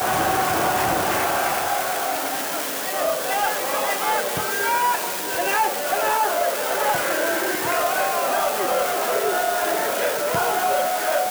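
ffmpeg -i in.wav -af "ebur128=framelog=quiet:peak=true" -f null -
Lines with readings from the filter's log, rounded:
Integrated loudness:
  I:         -21.3 LUFS
  Threshold: -31.3 LUFS
Loudness range:
  LRA:         1.2 LU
  Threshold: -41.4 LUFS
  LRA low:   -22.2 LUFS
  LRA high:  -21.0 LUFS
True peak:
  Peak:      -11.7 dBFS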